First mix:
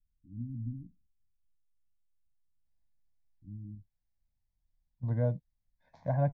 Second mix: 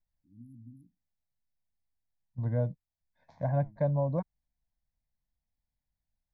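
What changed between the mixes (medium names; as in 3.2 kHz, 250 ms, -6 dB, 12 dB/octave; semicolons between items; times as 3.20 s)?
first voice: add tilt EQ +4.5 dB/octave; second voice: entry -2.65 s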